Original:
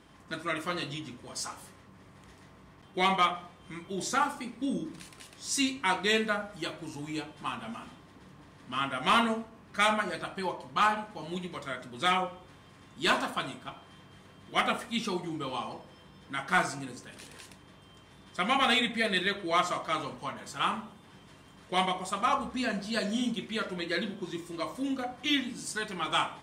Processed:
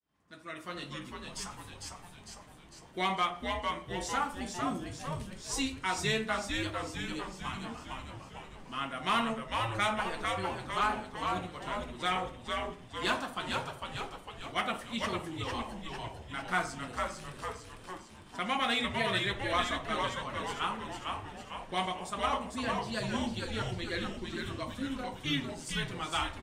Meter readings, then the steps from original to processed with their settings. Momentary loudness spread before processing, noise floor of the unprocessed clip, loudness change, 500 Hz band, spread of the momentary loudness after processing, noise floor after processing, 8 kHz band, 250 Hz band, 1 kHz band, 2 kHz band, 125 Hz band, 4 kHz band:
16 LU, -55 dBFS, -4.0 dB, -2.5 dB, 13 LU, -52 dBFS, -3.0 dB, -4.0 dB, -3.0 dB, -3.5 dB, +2.0 dB, -3.0 dB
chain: fade-in on the opening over 0.98 s; frequency-shifting echo 452 ms, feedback 57%, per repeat -120 Hz, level -3.5 dB; trim -5 dB

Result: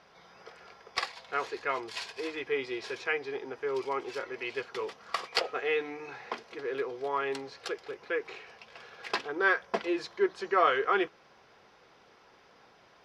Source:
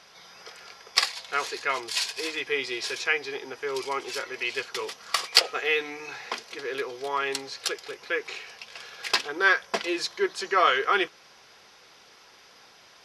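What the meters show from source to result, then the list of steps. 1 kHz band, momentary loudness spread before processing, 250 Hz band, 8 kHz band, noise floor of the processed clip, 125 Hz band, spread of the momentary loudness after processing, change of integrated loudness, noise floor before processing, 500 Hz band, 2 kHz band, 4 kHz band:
-3.5 dB, 16 LU, -0.5 dB, -16.5 dB, -60 dBFS, 0.0 dB, 14 LU, -5.5 dB, -54 dBFS, -1.0 dB, -6.5 dB, -12.0 dB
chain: low-pass 1 kHz 6 dB/octave

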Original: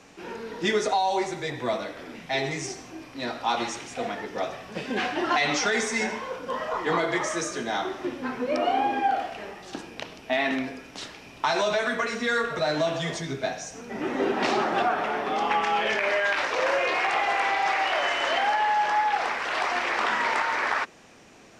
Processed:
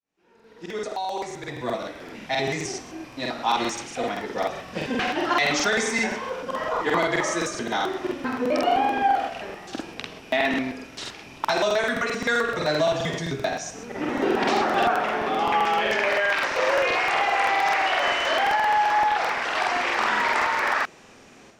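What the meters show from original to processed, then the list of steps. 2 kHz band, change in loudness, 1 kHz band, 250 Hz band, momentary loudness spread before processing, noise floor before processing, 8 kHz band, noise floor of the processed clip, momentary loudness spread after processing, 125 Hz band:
+2.5 dB, +2.5 dB, +2.5 dB, +2.5 dB, 12 LU, -47 dBFS, +2.0 dB, -49 dBFS, 11 LU, +2.5 dB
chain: fade-in on the opening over 2.44 s; level rider gain up to 9.5 dB; crackling interface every 0.13 s, samples 2048, repeat, from 0.35 s; trim -6.5 dB

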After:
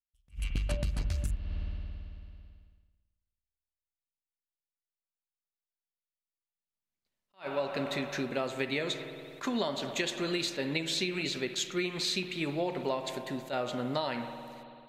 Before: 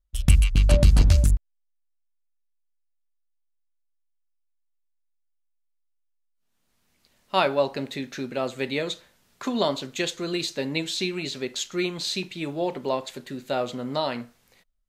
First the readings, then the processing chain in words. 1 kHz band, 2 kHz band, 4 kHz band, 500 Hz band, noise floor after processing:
-7.5 dB, -3.5 dB, -4.0 dB, -6.5 dB, under -85 dBFS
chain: spring tank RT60 2.9 s, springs 55 ms, chirp 50 ms, DRR 10 dB; expander -48 dBFS; dynamic bell 1.9 kHz, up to +4 dB, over -43 dBFS, Q 1.1; compression 16:1, threshold -25 dBFS, peak gain reduction 16.5 dB; attacks held to a fixed rise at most 290 dB/s; trim -2 dB

